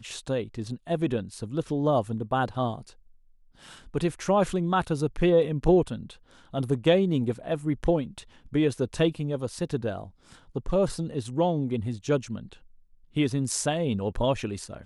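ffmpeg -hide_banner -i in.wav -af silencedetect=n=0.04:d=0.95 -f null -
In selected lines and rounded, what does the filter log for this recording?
silence_start: 2.74
silence_end: 3.95 | silence_duration: 1.22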